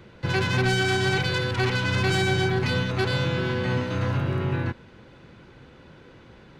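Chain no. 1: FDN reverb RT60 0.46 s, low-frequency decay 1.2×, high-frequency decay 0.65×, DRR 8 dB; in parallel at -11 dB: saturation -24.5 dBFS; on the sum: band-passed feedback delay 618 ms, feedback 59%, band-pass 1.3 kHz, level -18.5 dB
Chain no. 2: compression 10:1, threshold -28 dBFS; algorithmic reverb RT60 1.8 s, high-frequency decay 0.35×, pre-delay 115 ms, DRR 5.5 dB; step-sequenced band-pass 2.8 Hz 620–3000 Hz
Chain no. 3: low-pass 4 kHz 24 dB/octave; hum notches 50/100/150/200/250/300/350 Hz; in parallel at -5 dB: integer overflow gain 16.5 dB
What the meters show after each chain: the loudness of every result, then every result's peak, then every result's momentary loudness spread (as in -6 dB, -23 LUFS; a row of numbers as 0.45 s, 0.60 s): -22.5 LUFS, -43.0 LUFS, -21.5 LUFS; -9.5 dBFS, -29.0 dBFS, -11.0 dBFS; 4 LU, 20 LU, 4 LU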